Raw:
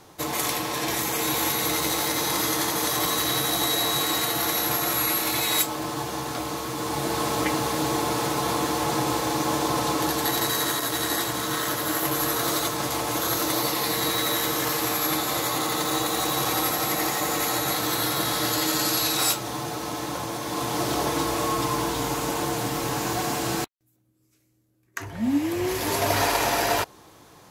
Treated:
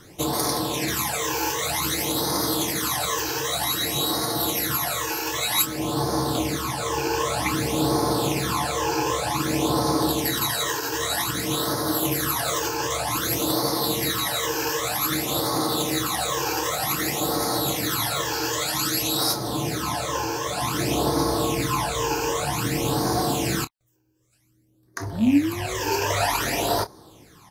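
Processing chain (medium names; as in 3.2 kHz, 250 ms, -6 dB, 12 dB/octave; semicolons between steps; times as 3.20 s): rattle on loud lows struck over -30 dBFS, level -26 dBFS; in parallel at +2.5 dB: gain riding; on the sum: phase shifter stages 12, 0.53 Hz, lowest notch 200–2700 Hz; doubling 28 ms -12.5 dB; trim -4 dB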